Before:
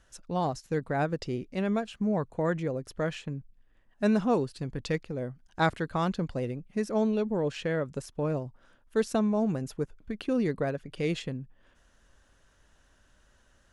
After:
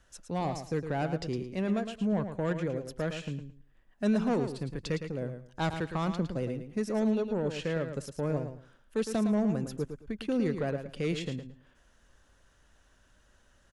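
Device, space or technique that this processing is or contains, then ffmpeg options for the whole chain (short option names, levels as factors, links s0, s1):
one-band saturation: -filter_complex "[0:a]acrossover=split=290|3600[s0][s1][s2];[s1]asoftclip=type=tanh:threshold=0.0501[s3];[s0][s3][s2]amix=inputs=3:normalize=0,aecho=1:1:110|220|330:0.376|0.0789|0.0166,volume=0.891"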